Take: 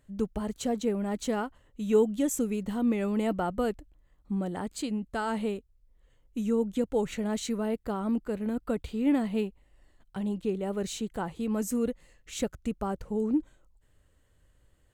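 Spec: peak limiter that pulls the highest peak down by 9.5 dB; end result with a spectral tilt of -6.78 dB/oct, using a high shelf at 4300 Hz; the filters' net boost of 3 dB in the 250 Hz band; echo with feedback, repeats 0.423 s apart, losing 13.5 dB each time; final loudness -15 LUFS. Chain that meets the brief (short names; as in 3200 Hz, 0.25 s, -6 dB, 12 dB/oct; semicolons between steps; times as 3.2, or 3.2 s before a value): bell 250 Hz +3.5 dB; high shelf 4300 Hz -6 dB; limiter -20.5 dBFS; feedback echo 0.423 s, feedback 21%, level -13.5 dB; gain +15.5 dB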